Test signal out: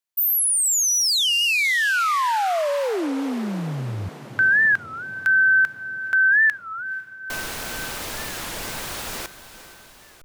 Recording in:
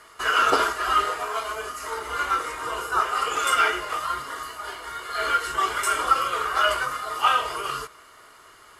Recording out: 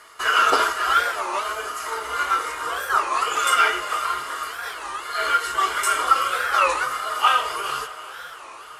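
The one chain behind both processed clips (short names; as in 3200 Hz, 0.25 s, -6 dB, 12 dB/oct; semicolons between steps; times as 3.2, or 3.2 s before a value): low shelf 340 Hz -9 dB; on a send: diffused feedback echo 0.467 s, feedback 61%, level -14.5 dB; on the sum: record warp 33 1/3 rpm, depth 250 cents; gain +3 dB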